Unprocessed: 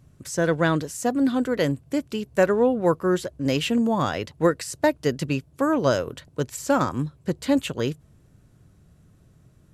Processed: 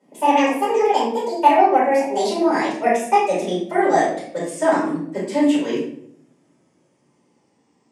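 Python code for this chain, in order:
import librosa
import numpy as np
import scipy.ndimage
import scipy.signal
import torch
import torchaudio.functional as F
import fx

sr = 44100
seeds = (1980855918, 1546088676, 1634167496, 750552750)

y = fx.speed_glide(x, sr, from_pct=176, to_pct=70)
y = fx.cabinet(y, sr, low_hz=230.0, low_slope=24, high_hz=9800.0, hz=(880.0, 1400.0, 1900.0, 4000.0), db=(4, -10, 4, -8))
y = fx.room_shoebox(y, sr, seeds[0], volume_m3=110.0, walls='mixed', distance_m=4.9)
y = y * 10.0 ** (-11.5 / 20.0)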